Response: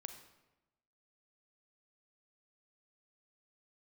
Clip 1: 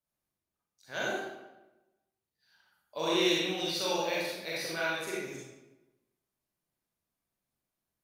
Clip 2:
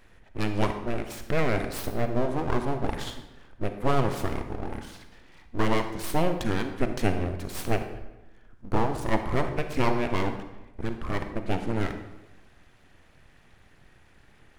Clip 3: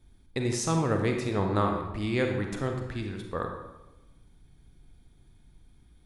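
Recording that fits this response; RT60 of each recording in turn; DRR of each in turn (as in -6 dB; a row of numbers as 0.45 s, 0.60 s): 2; 1.0 s, 1.0 s, 1.0 s; -7.0 dB, 7.0 dB, 3.0 dB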